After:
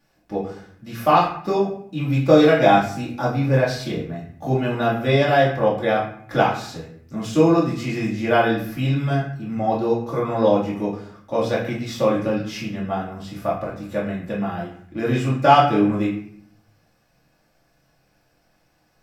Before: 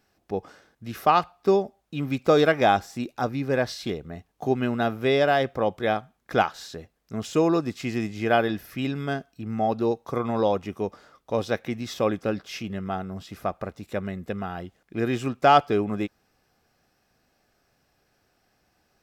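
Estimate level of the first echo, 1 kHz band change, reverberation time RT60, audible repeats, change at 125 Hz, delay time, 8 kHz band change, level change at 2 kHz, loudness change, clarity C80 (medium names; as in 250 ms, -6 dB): no echo, +4.5 dB, 0.60 s, no echo, +9.0 dB, no echo, +2.5 dB, +4.0 dB, +5.0 dB, 9.0 dB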